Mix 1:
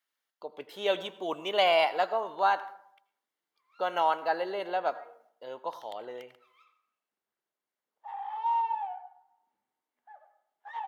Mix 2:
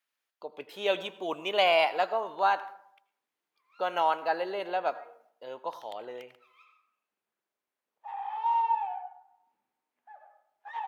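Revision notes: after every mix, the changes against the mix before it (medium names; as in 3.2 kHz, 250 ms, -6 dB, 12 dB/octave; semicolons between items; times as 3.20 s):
background: send +6.5 dB; master: remove band-stop 2.5 kHz, Q 9.7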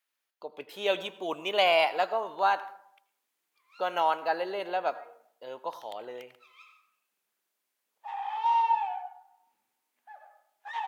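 background: add treble shelf 2.2 kHz +11.5 dB; master: add treble shelf 6.5 kHz +4.5 dB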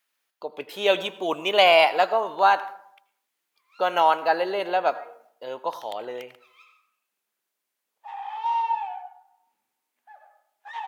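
speech +7.0 dB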